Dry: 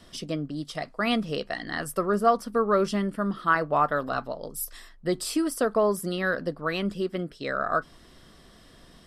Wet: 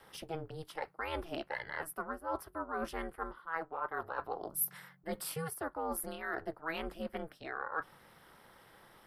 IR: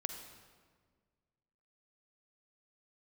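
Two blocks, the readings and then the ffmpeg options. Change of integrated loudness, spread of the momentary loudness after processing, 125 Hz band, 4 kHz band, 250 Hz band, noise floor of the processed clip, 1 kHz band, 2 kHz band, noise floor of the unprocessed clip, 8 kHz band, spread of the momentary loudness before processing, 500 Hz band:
-12.5 dB, 12 LU, -14.0 dB, -13.5 dB, -16.5 dB, -63 dBFS, -12.0 dB, -10.0 dB, -53 dBFS, -5.5 dB, 10 LU, -14.5 dB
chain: -filter_complex "[0:a]acrossover=split=540 2200:gain=0.178 1 0.2[a][b][c];[a][b][c]amix=inputs=3:normalize=0,areverse,acompressor=threshold=-35dB:ratio=12,areverse,aeval=exprs='val(0)*sin(2*PI*160*n/s)':c=same,aexciter=amount=5.4:drive=6.7:freq=10k,volume=3.5dB"

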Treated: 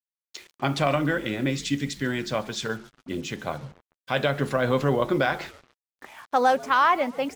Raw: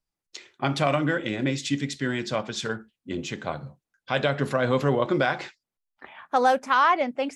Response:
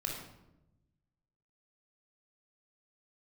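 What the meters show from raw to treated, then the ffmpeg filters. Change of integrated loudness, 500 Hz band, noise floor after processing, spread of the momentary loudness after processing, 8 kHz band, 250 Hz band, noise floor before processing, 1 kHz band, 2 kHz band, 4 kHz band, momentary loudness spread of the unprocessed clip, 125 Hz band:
0.0 dB, 0.0 dB, under -85 dBFS, 14 LU, 0.0 dB, 0.0 dB, under -85 dBFS, 0.0 dB, 0.0 dB, 0.0 dB, 14 LU, 0.0 dB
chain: -filter_complex "[0:a]asplit=4[a][b][c][d];[b]adelay=142,afreqshift=-91,volume=-22dB[e];[c]adelay=284,afreqshift=-182,volume=-28.7dB[f];[d]adelay=426,afreqshift=-273,volume=-35.5dB[g];[a][e][f][g]amix=inputs=4:normalize=0,acrusher=bits=7:mix=0:aa=0.5"

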